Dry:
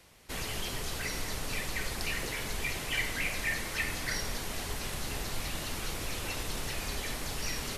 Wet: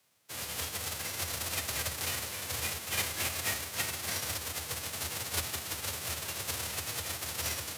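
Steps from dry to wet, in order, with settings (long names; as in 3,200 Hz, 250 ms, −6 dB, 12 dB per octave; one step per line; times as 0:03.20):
spectral envelope flattened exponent 0.3
frequency shifter +70 Hz
expander for the loud parts 1.5 to 1, over −53 dBFS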